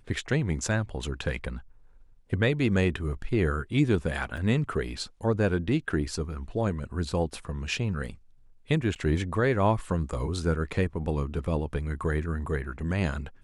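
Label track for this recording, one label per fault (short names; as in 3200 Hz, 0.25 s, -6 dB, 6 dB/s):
4.370000	4.370000	gap 4.9 ms
8.950000	8.960000	gap 8.8 ms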